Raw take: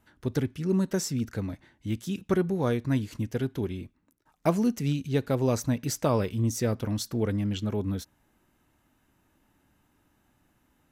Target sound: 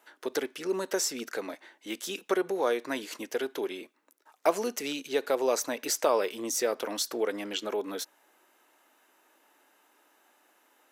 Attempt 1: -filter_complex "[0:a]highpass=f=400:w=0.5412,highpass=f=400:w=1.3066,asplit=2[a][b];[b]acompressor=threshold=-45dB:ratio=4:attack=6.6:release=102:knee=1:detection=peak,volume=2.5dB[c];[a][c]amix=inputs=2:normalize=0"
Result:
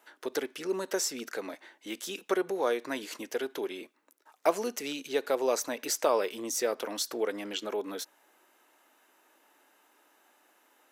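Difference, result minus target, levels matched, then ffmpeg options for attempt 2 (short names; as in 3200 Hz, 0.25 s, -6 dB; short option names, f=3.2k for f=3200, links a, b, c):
compressor: peak gain reduction +5 dB
-filter_complex "[0:a]highpass=f=400:w=0.5412,highpass=f=400:w=1.3066,asplit=2[a][b];[b]acompressor=threshold=-38.5dB:ratio=4:attack=6.6:release=102:knee=1:detection=peak,volume=2.5dB[c];[a][c]amix=inputs=2:normalize=0"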